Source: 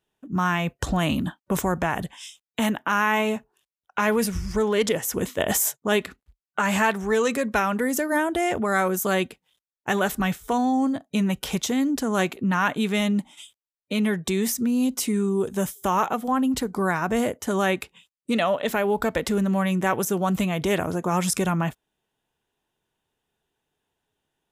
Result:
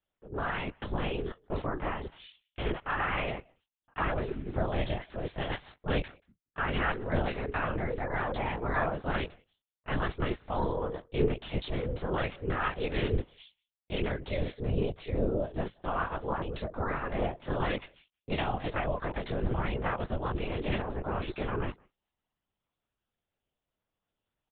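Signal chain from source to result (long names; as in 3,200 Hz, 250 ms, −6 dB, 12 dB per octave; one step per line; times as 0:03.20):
ring modulation 200 Hz
multi-voice chorus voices 4, 0.15 Hz, delay 22 ms, depth 3.1 ms
far-end echo of a speakerphone 180 ms, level −27 dB
linear-prediction vocoder at 8 kHz whisper
level −3 dB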